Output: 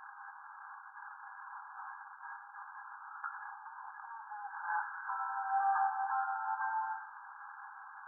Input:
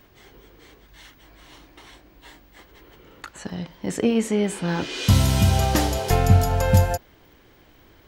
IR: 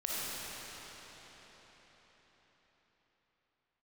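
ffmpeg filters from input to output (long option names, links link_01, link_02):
-filter_complex "[0:a]aeval=exprs='val(0)+0.5*0.0266*sgn(val(0))':channel_layout=same,asplit=2[link_01][link_02];[1:a]atrim=start_sample=2205,atrim=end_sample=4410,adelay=27[link_03];[link_02][link_03]afir=irnorm=-1:irlink=0,volume=-8.5dB[link_04];[link_01][link_04]amix=inputs=2:normalize=0,afftfilt=real='re*between(b*sr/4096,770,1700)':imag='im*between(b*sr/4096,770,1700)':win_size=4096:overlap=0.75,volume=-4.5dB"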